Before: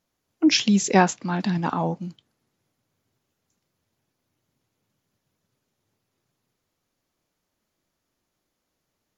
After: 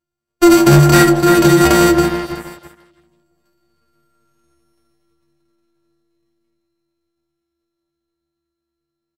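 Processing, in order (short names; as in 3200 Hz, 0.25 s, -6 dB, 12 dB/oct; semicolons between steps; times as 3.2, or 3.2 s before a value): sample sorter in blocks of 128 samples; Doppler pass-by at 4.16, 5 m/s, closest 4.1 m; metallic resonator 69 Hz, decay 0.76 s, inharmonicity 0.03; darkening echo 0.332 s, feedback 42%, low-pass 1900 Hz, level -12.5 dB; sample leveller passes 3; delay with a stepping band-pass 0.162 s, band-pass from 600 Hz, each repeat 1.4 oct, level -10 dB; downsampling 32000 Hz; maximiser +31.5 dB; gain -1.5 dB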